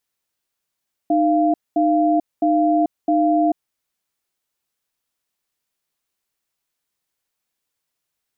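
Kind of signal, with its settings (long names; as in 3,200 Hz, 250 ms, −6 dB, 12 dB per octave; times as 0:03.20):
tone pair in a cadence 307 Hz, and 691 Hz, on 0.44 s, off 0.22 s, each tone −16.5 dBFS 2.63 s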